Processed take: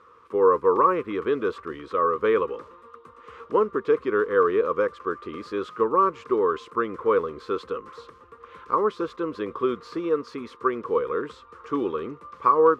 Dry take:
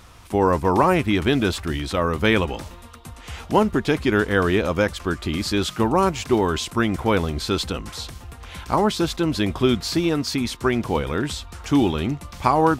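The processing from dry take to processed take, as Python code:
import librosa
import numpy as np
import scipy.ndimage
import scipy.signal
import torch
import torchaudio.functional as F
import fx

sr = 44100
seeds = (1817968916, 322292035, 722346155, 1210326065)

y = fx.double_bandpass(x, sr, hz=730.0, octaves=1.3)
y = y * 10.0 ** (5.5 / 20.0)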